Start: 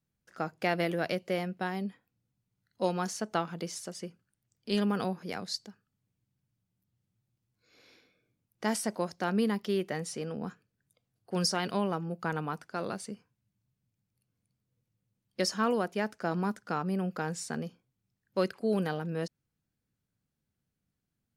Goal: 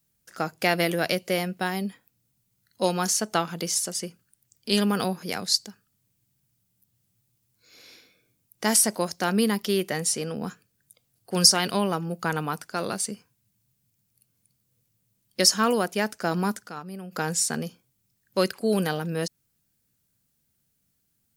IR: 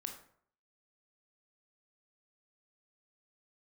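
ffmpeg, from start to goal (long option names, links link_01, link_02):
-filter_complex "[0:a]crystalizer=i=3:c=0,asplit=3[link_01][link_02][link_03];[link_01]afade=type=out:start_time=16.67:duration=0.02[link_04];[link_02]agate=range=-12dB:threshold=-27dB:ratio=16:detection=peak,afade=type=in:start_time=16.67:duration=0.02,afade=type=out:start_time=17.11:duration=0.02[link_05];[link_03]afade=type=in:start_time=17.11:duration=0.02[link_06];[link_04][link_05][link_06]amix=inputs=3:normalize=0,volume=5dB"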